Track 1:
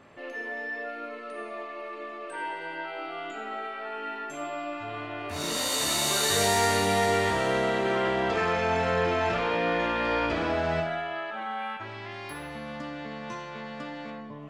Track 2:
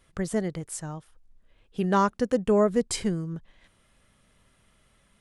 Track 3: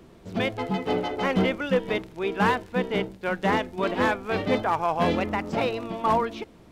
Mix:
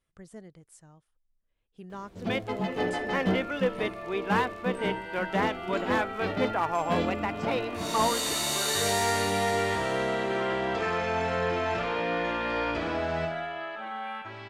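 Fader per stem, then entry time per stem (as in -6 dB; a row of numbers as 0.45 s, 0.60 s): -2.5 dB, -18.5 dB, -3.5 dB; 2.45 s, 0.00 s, 1.90 s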